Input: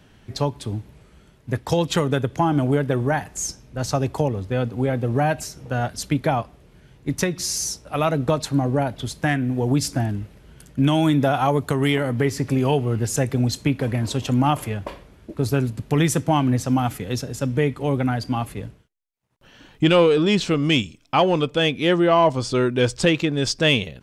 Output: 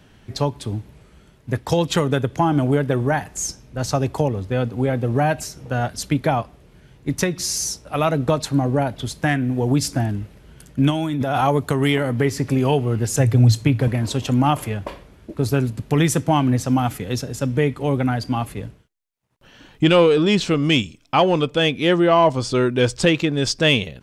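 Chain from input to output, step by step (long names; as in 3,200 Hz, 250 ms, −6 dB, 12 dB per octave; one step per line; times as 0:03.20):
0:10.90–0:11.41: compressor whose output falls as the input rises −23 dBFS, ratio −1
0:13.19–0:13.88: parametric band 110 Hz +14.5 dB 0.34 octaves
level +1.5 dB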